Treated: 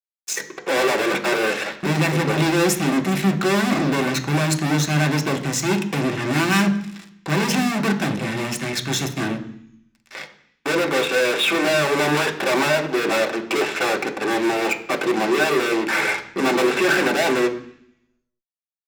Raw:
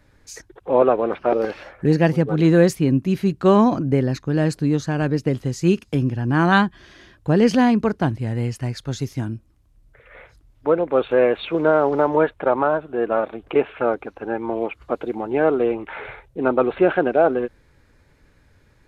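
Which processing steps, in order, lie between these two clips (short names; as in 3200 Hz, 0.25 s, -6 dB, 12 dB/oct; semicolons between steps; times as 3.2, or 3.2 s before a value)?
HPF 130 Hz 12 dB/oct; notch 4700 Hz, Q 5.6; fuzz box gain 35 dB, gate -42 dBFS; reverb RT60 0.65 s, pre-delay 3 ms, DRR 2.5 dB; gain -4.5 dB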